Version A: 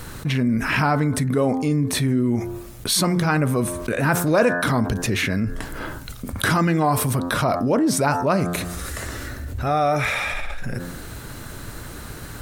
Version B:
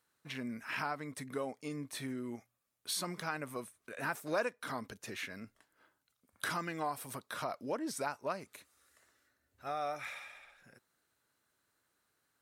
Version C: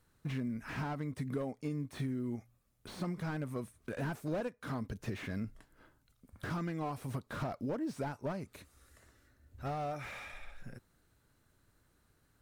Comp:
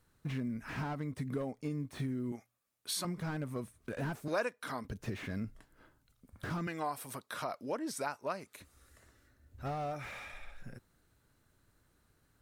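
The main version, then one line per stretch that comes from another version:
C
0:02.32–0:03.05: punch in from B
0:04.28–0:04.85: punch in from B
0:06.67–0:08.60: punch in from B
not used: A

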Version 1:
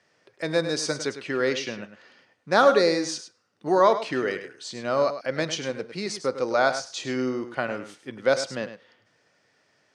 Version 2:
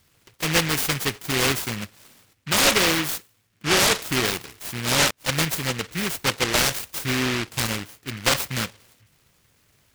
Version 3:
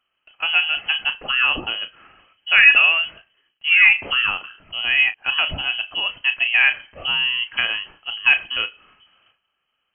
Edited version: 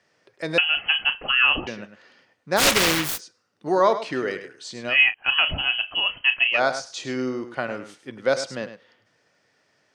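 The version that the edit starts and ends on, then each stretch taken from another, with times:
1
0:00.58–0:01.67: punch in from 3
0:02.59–0:03.19: punch in from 2, crossfade 0.06 s
0:04.92–0:06.56: punch in from 3, crossfade 0.10 s

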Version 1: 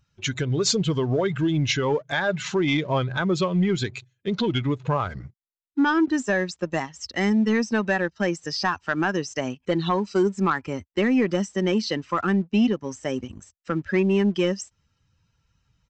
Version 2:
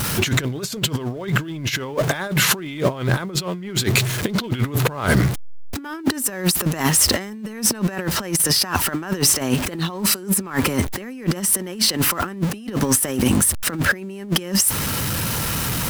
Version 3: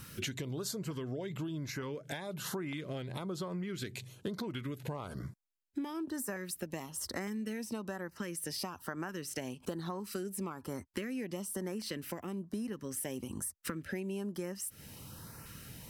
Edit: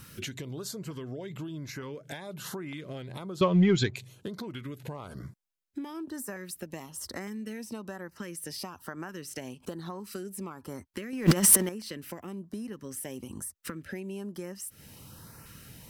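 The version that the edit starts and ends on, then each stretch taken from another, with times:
3
0:03.41–0:03.96: punch in from 1
0:11.13–0:11.69: punch in from 2

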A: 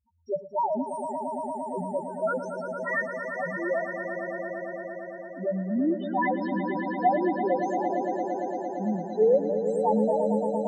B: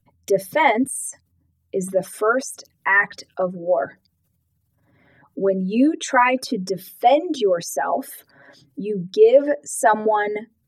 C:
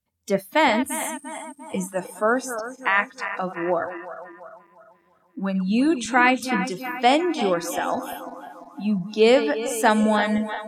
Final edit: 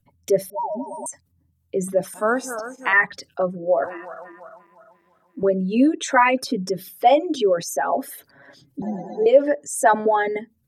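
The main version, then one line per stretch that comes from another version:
B
0:00.50–0:01.06: punch in from A
0:02.14–0:02.93: punch in from C
0:03.84–0:05.43: punch in from C
0:08.82–0:09.26: punch in from A

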